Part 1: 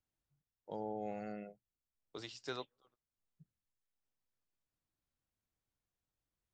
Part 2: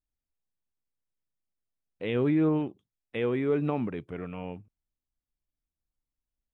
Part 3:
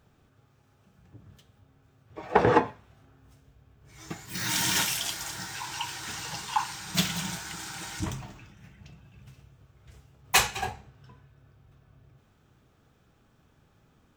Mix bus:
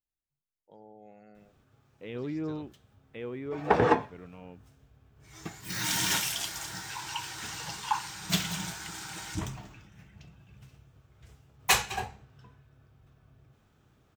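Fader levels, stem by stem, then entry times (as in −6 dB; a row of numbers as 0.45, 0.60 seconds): −11.0, −10.0, −2.0 decibels; 0.00, 0.00, 1.35 seconds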